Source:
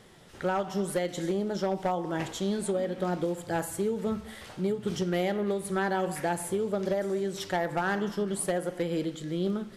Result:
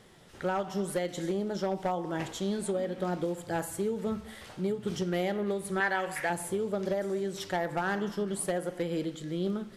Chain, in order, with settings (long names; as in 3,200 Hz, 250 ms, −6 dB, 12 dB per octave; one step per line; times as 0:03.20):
0:05.80–0:06.30: octave-band graphic EQ 125/250/2,000 Hz −5/−11/+10 dB
level −2 dB